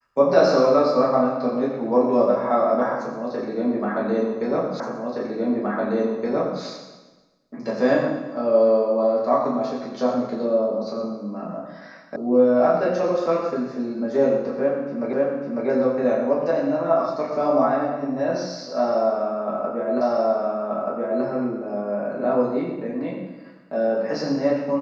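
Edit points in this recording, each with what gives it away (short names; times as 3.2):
4.8 repeat of the last 1.82 s
12.16 sound cut off
15.13 repeat of the last 0.55 s
20.01 repeat of the last 1.23 s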